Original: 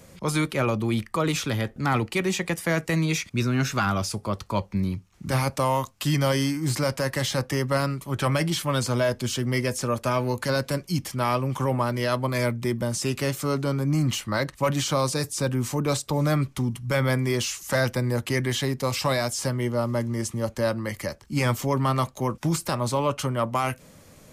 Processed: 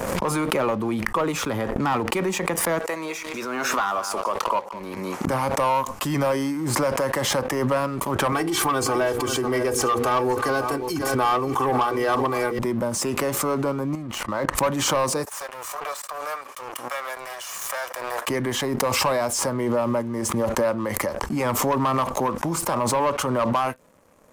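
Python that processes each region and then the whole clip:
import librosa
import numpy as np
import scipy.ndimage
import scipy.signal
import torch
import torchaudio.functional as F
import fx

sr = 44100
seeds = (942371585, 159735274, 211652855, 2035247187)

y = fx.chain(x, sr, fx.highpass(hz=480.0, slope=12),
    fx.echo_single(ms=203, db=-16.0), at=(2.79, 5.27))
y = fx.chain(y, sr, fx.hum_notches(base_hz=60, count=8),
    fx.comb(ms=2.6, depth=0.94),
    fx.echo_single(ms=536, db=-13.0), at=(8.32, 12.59))
y = fx.chain(y, sr, fx.high_shelf(hz=5400.0, db=-7.0),
    fx.level_steps(step_db=15), at=(13.95, 14.55))
y = fx.chain(y, sr, fx.lower_of_two(delay_ms=1.7),
    fx.highpass(hz=1200.0, slope=12), at=(15.25, 18.28))
y = fx.graphic_eq_10(y, sr, hz=(125, 250, 500, 1000, 4000), db=(-5, 4, 6, 11, -6))
y = fx.leveller(y, sr, passes=2)
y = fx.pre_swell(y, sr, db_per_s=25.0)
y = F.gain(torch.from_numpy(y), -11.5).numpy()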